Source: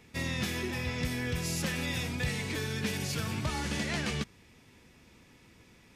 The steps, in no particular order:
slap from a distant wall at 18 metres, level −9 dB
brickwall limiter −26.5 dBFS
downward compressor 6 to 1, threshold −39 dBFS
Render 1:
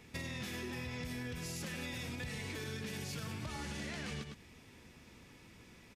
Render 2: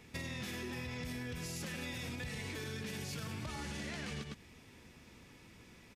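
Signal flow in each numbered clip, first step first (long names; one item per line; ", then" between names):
brickwall limiter, then slap from a distant wall, then downward compressor
slap from a distant wall, then brickwall limiter, then downward compressor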